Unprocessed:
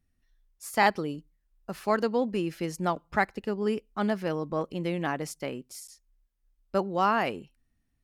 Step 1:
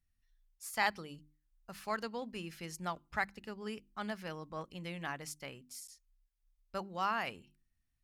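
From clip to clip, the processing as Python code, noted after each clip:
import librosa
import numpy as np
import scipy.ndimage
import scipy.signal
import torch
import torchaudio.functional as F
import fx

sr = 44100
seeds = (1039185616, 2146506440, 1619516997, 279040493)

y = fx.peak_eq(x, sr, hz=370.0, db=-12.0, octaves=2.4)
y = fx.hum_notches(y, sr, base_hz=50, count=7)
y = y * 10.0 ** (-4.5 / 20.0)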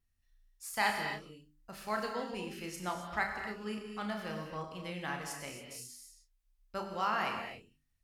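y = fx.vibrato(x, sr, rate_hz=0.47, depth_cents=6.1)
y = fx.doubler(y, sr, ms=33.0, db=-7)
y = fx.rev_gated(y, sr, seeds[0], gate_ms=300, shape='flat', drr_db=3.0)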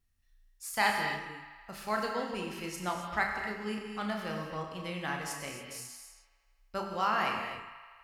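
y = fx.echo_wet_bandpass(x, sr, ms=81, feedback_pct=75, hz=1600.0, wet_db=-12.0)
y = y * 10.0 ** (3.0 / 20.0)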